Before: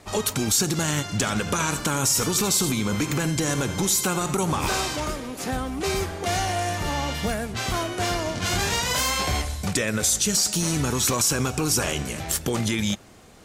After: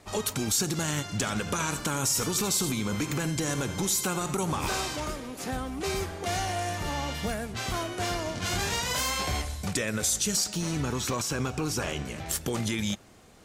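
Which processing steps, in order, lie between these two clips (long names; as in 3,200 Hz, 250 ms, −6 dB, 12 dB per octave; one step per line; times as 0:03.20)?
0:10.44–0:12.26: parametric band 11,000 Hz −9.5 dB 1.5 octaves
level −5 dB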